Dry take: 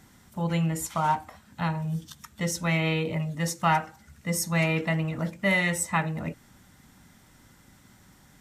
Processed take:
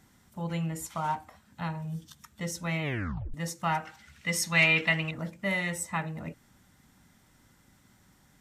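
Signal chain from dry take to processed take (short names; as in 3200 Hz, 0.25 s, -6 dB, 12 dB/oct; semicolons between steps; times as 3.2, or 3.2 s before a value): 2.82 tape stop 0.52 s; 3.85–5.11 bell 2800 Hz +14.5 dB 2.2 oct; gain -6 dB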